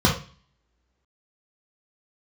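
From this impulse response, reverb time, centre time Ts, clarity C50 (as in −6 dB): non-exponential decay, 26 ms, 7.0 dB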